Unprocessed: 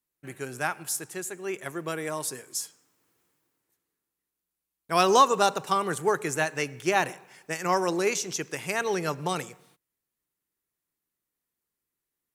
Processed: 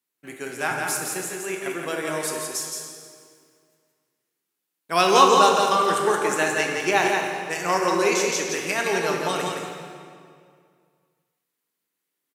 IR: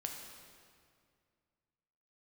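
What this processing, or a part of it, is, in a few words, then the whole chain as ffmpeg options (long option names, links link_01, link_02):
PA in a hall: -filter_complex "[0:a]highpass=180,equalizer=frequency=3000:width_type=o:width=1.5:gain=3.5,aecho=1:1:170:0.596[link_01];[1:a]atrim=start_sample=2205[link_02];[link_01][link_02]afir=irnorm=-1:irlink=0,asettb=1/sr,asplit=3[link_03][link_04][link_05];[link_03]atrim=end=0.714[link_06];[link_04]atrim=start=0.71:end=1.3,asetpts=PTS-STARTPTS,afade=type=in:duration=0.004:curve=qsin,afade=type=out:start_time=0.586:duration=0.004:curve=qsin,lowshelf=frequency=230:gain=8[link_07];[link_05]atrim=start=1.296[link_08];[link_06][link_07]acrossfade=duration=0.004:curve1=hsin:curve2=qsin[link_09];[link_09][link_08]acrossfade=duration=0.004:curve1=qsin:curve2=hsin,volume=4dB"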